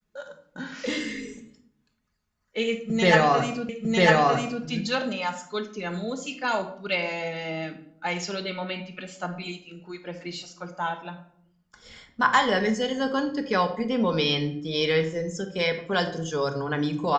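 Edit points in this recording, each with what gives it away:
0:03.69: the same again, the last 0.95 s

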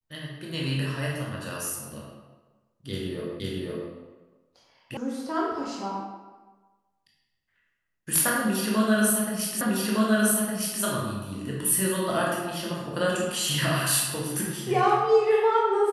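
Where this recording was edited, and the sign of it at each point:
0:03.40: the same again, the last 0.51 s
0:04.97: cut off before it has died away
0:09.61: the same again, the last 1.21 s

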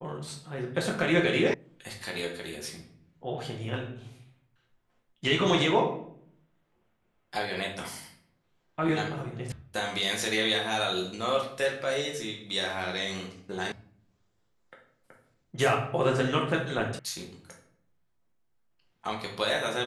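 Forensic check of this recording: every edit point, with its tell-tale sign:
0:01.54: cut off before it has died away
0:09.52: cut off before it has died away
0:13.72: cut off before it has died away
0:16.99: cut off before it has died away

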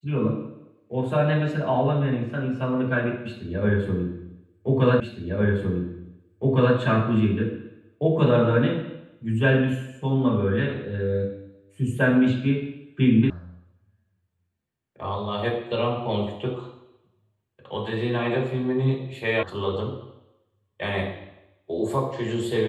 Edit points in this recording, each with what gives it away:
0:05.00: the same again, the last 1.76 s
0:13.30: cut off before it has died away
0:19.43: cut off before it has died away

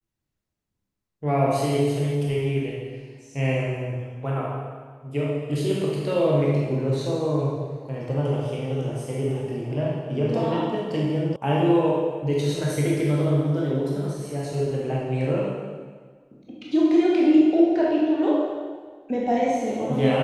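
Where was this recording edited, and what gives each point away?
0:11.36: cut off before it has died away

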